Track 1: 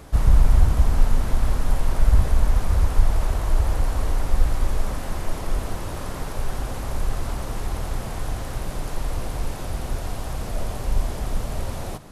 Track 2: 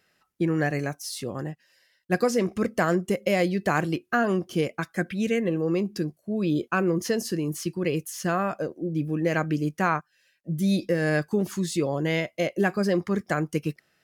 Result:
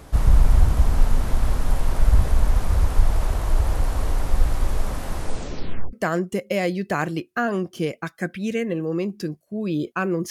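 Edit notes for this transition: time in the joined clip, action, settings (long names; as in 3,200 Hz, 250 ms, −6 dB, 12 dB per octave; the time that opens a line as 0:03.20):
track 1
0:05.15: tape stop 0.78 s
0:05.93: continue with track 2 from 0:02.69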